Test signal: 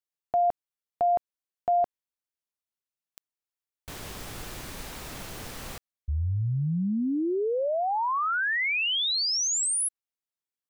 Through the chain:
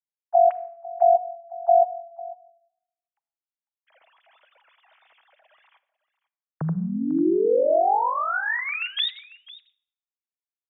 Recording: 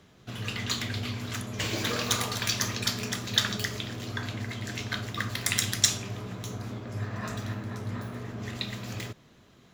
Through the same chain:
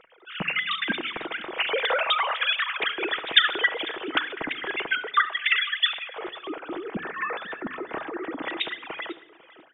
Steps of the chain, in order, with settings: sine-wave speech; echo 0.498 s -19.5 dB; shoebox room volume 2900 m³, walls furnished, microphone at 0.63 m; gain +4 dB

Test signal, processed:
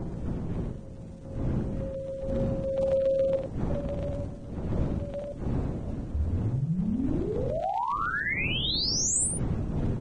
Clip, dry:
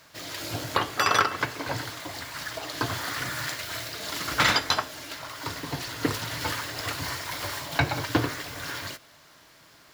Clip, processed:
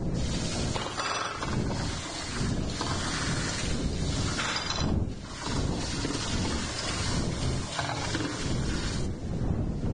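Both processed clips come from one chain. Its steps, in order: wind noise 210 Hz -22 dBFS; notches 50/100/150/200/250/300/350/400/450 Hz; dynamic EQ 1900 Hz, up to -4 dB, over -44 dBFS, Q 2.9; compressor 12:1, threshold -27 dBFS; crackle 320/s -52 dBFS; LFO notch saw down 7.2 Hz 520–3500 Hz; loudspeakers at several distances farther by 19 m -5 dB, 35 m -4 dB; Vorbis 16 kbps 22050 Hz

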